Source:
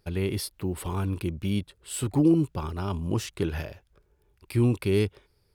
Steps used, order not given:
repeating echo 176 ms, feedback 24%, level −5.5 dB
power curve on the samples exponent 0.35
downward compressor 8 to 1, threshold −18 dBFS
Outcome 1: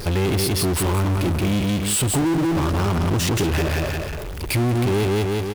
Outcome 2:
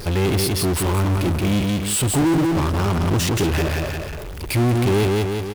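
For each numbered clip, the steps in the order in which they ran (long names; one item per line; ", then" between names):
repeating echo, then power curve on the samples, then downward compressor
downward compressor, then repeating echo, then power curve on the samples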